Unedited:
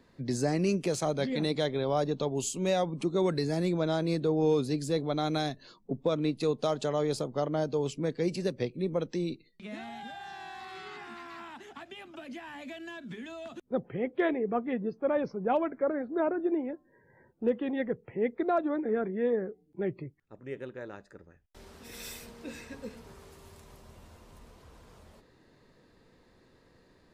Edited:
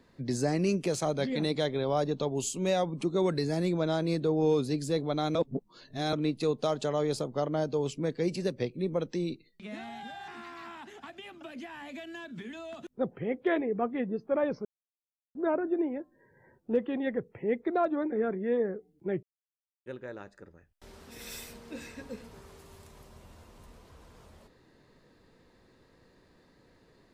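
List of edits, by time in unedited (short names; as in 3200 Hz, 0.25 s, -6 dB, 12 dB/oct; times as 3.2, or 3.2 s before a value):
5.35–6.13 reverse
10.28–11.01 cut
15.38–16.08 mute
19.96–20.59 mute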